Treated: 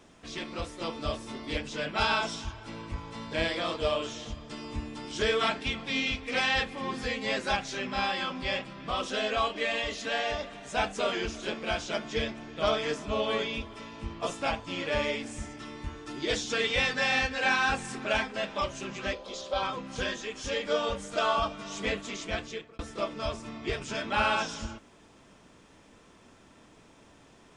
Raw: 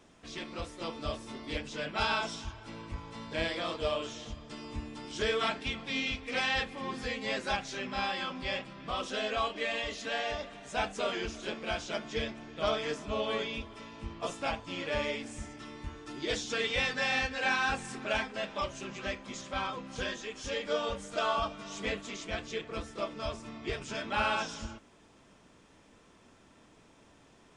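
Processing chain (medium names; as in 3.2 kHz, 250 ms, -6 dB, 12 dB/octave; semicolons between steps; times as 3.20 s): 19.13–19.63 s: ten-band graphic EQ 125 Hz -11 dB, 250 Hz -10 dB, 500 Hz +11 dB, 2 kHz -11 dB, 4 kHz +8 dB, 8 kHz -7 dB; 22.38–22.79 s: fade out; trim +3.5 dB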